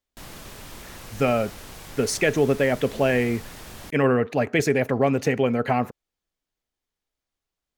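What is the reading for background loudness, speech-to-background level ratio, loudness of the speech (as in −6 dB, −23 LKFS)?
−41.0 LKFS, 18.0 dB, −23.0 LKFS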